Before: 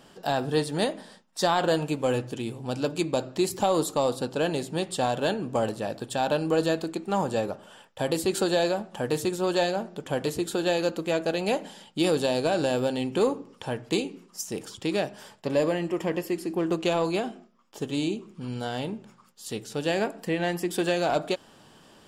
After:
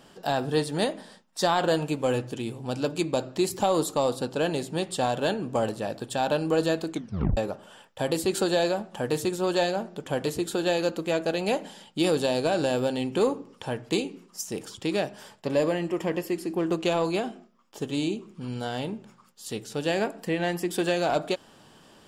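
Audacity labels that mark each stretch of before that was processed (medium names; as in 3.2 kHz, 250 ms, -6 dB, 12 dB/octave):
6.920000	6.920000	tape stop 0.45 s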